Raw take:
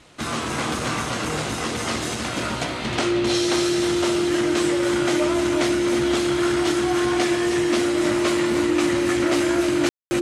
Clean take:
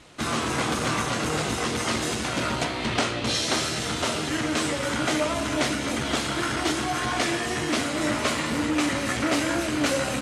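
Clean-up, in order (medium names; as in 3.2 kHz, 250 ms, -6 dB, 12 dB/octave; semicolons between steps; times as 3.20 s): band-stop 350 Hz, Q 30; room tone fill 9.89–10.11 s; inverse comb 313 ms -8.5 dB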